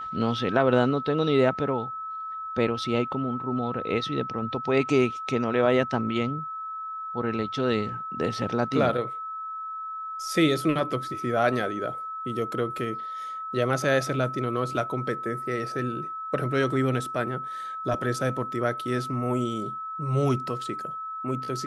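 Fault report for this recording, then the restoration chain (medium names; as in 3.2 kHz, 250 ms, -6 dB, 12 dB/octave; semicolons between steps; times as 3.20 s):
whine 1.3 kHz -32 dBFS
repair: band-stop 1.3 kHz, Q 30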